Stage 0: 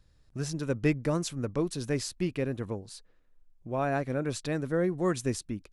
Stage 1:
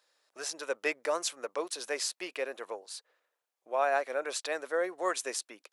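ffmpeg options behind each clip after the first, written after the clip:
-af "highpass=f=530:w=0.5412,highpass=f=530:w=1.3066,volume=1.5"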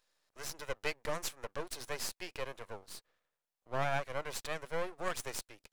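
-af "aeval=exprs='max(val(0),0)':c=same,volume=0.841"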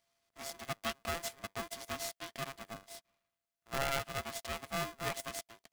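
-af "aeval=exprs='val(0)*sgn(sin(2*PI*680*n/s))':c=same,volume=0.794"

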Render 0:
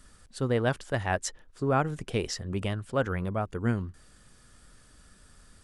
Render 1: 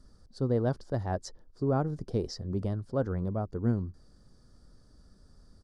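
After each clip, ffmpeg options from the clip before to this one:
-af "firequalizer=gain_entry='entry(320,0);entry(2600,-25);entry(4700,-3);entry(7600,-17)':delay=0.05:min_phase=1"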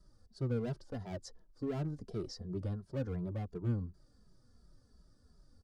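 -filter_complex "[0:a]acrossover=split=380|3300[s0][s1][s2];[s1]asoftclip=type=hard:threshold=0.0141[s3];[s0][s3][s2]amix=inputs=3:normalize=0,asplit=2[s4][s5];[s5]adelay=2.6,afreqshift=-2.8[s6];[s4][s6]amix=inputs=2:normalize=1,volume=0.668"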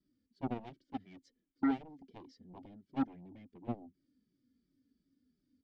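-filter_complex "[0:a]asplit=3[s0][s1][s2];[s0]bandpass=f=270:t=q:w=8,volume=1[s3];[s1]bandpass=f=2290:t=q:w=8,volume=0.501[s4];[s2]bandpass=f=3010:t=q:w=8,volume=0.355[s5];[s3][s4][s5]amix=inputs=3:normalize=0,aeval=exprs='0.0237*(cos(1*acos(clip(val(0)/0.0237,-1,1)))-cos(1*PI/2))+0.00531*(cos(7*acos(clip(val(0)/0.0237,-1,1)))-cos(7*PI/2))':c=same,volume=2.99"

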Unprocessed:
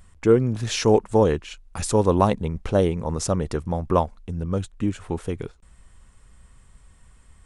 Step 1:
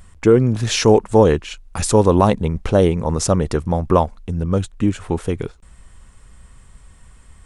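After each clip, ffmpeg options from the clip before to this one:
-af "alimiter=level_in=2.37:limit=0.891:release=50:level=0:latency=1,volume=0.891"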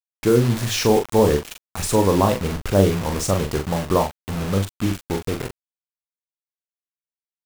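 -filter_complex "[0:a]flanger=delay=6.2:depth=4.7:regen=84:speed=0.51:shape=triangular,acrusher=bits=4:mix=0:aa=0.000001,asplit=2[s0][s1];[s1]adelay=41,volume=0.501[s2];[s0][s2]amix=inputs=2:normalize=0"

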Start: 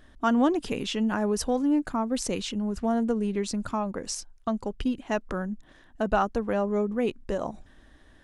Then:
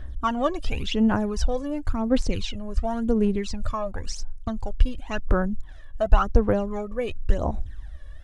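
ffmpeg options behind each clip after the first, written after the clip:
-filter_complex "[0:a]lowshelf=f=120:t=q:w=1.5:g=12,aphaser=in_gain=1:out_gain=1:delay=1.8:decay=0.68:speed=0.93:type=sinusoidal,acrossover=split=6200[s0][s1];[s1]acompressor=threshold=0.002:ratio=4:attack=1:release=60[s2];[s0][s2]amix=inputs=2:normalize=0,volume=0.891"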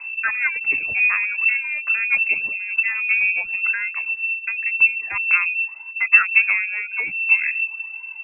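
-filter_complex "[0:a]asplit=2[s0][s1];[s1]volume=9.44,asoftclip=hard,volume=0.106,volume=0.282[s2];[s0][s2]amix=inputs=2:normalize=0,lowpass=f=2300:t=q:w=0.5098,lowpass=f=2300:t=q:w=0.6013,lowpass=f=2300:t=q:w=0.9,lowpass=f=2300:t=q:w=2.563,afreqshift=-2700"

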